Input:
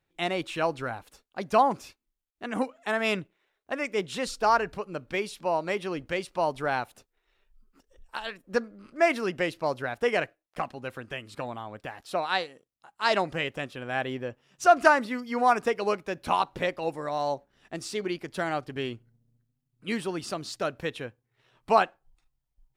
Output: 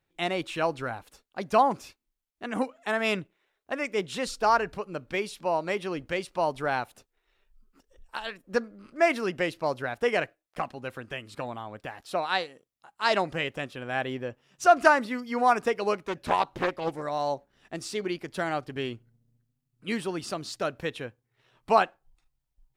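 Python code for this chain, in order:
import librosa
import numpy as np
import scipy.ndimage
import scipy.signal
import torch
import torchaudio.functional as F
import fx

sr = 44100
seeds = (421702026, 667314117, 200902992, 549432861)

y = fx.doppler_dist(x, sr, depth_ms=0.53, at=(15.98, 17.03))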